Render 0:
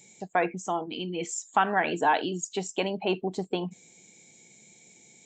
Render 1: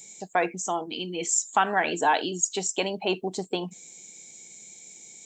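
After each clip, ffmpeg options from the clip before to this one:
-af "bass=f=250:g=-4,treble=f=4k:g=10,volume=1dB"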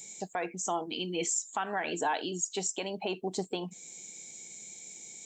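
-af "alimiter=limit=-21dB:level=0:latency=1:release=385"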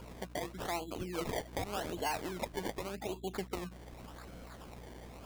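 -af "aeval=exprs='val(0)+0.00501*(sin(2*PI*60*n/s)+sin(2*PI*2*60*n/s)/2+sin(2*PI*3*60*n/s)/3+sin(2*PI*4*60*n/s)/4+sin(2*PI*5*60*n/s)/5)':c=same,acrusher=samples=23:mix=1:aa=0.000001:lfo=1:lforange=23:lforate=0.86,volume=-5dB"

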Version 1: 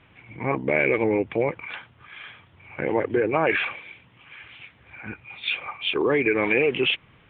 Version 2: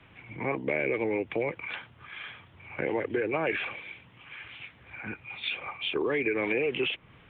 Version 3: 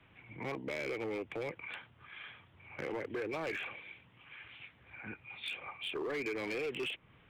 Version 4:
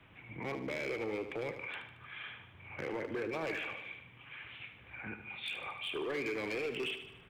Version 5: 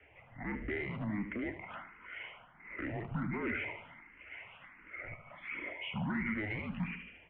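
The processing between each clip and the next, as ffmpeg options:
-filter_complex "[0:a]acrossover=split=88|300|740|1700[a][b][c][d][e];[a]acompressor=threshold=-58dB:ratio=4[f];[b]acompressor=threshold=-40dB:ratio=4[g];[c]acompressor=threshold=-29dB:ratio=4[h];[d]acompressor=threshold=-45dB:ratio=4[i];[e]acompressor=threshold=-32dB:ratio=4[j];[f][g][h][i][j]amix=inputs=5:normalize=0"
-af "asoftclip=type=hard:threshold=-25.5dB,volume=-7.5dB"
-af "alimiter=level_in=12dB:limit=-24dB:level=0:latency=1:release=31,volume=-12dB,aecho=1:1:75|150|225|300|375|450:0.316|0.177|0.0992|0.0555|0.0311|0.0174,volume=3dB"
-filter_complex "[0:a]highpass=f=240:t=q:w=0.5412,highpass=f=240:t=q:w=1.307,lowpass=f=2.9k:t=q:w=0.5176,lowpass=f=2.9k:t=q:w=0.7071,lowpass=f=2.9k:t=q:w=1.932,afreqshift=-210,asplit=2[a][b];[b]afreqshift=1.4[c];[a][c]amix=inputs=2:normalize=1,volume=3.5dB"

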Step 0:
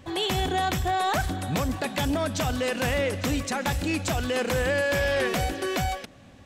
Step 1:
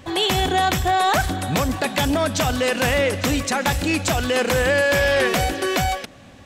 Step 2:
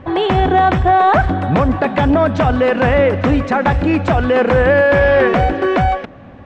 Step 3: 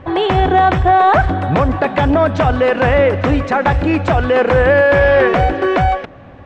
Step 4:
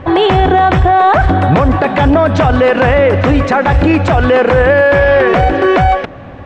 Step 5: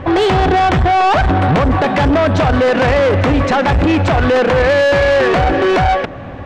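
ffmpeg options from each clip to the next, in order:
-af "lowshelf=f=380:g=-3.5,volume=7.5dB"
-af "lowpass=1.5k,volume=8dB"
-af "equalizer=f=220:t=o:w=0.57:g=-6,volume=1dB"
-af "alimiter=limit=-10dB:level=0:latency=1:release=52,volume=7.5dB"
-af "asoftclip=type=tanh:threshold=-11dB,volume=2dB"

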